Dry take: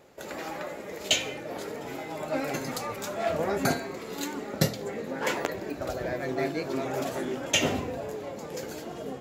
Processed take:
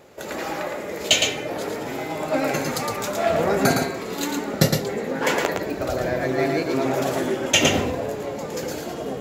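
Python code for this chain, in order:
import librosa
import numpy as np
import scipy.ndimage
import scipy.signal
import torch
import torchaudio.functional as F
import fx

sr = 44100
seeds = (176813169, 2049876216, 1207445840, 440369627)

y = x + 10.0 ** (-4.5 / 20.0) * np.pad(x, (int(112 * sr / 1000.0), 0))[:len(x)]
y = F.gain(torch.from_numpy(y), 6.5).numpy()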